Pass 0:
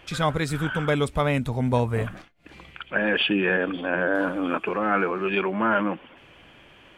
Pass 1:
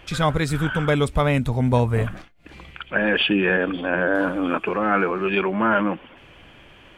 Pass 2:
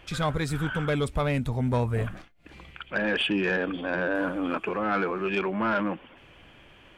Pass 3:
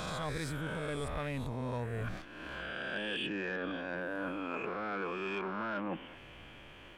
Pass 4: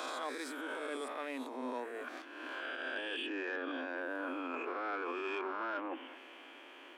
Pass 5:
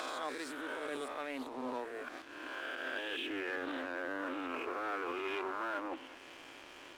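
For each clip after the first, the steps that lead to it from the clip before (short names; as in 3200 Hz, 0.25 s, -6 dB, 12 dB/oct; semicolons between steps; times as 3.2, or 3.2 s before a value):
low shelf 81 Hz +8 dB; gain +2.5 dB
soft clip -11.5 dBFS, distortion -19 dB; gain -5 dB
spectral swells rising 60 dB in 1.35 s; reverse; compressor 5:1, threshold -33 dBFS, peak gain reduction 12.5 dB; reverse; gain -2.5 dB
limiter -30.5 dBFS, peak gain reduction 5 dB; rippled Chebyshev high-pass 250 Hz, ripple 3 dB; gain +2 dB
crossover distortion -57.5 dBFS; upward compressor, threshold -44 dBFS; Doppler distortion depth 0.38 ms; gain +1 dB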